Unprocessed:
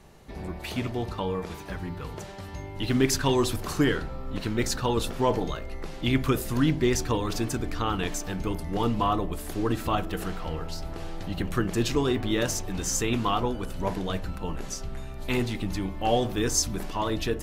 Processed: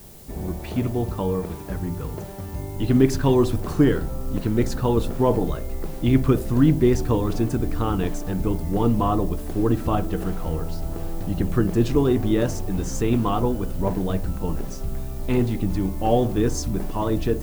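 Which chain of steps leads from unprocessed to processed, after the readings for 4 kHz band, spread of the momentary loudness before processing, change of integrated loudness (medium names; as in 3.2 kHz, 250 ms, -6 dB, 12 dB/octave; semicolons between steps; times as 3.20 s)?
-6.0 dB, 12 LU, +5.0 dB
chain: tilt shelf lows +7.5 dB, about 1.1 kHz; added noise blue -48 dBFS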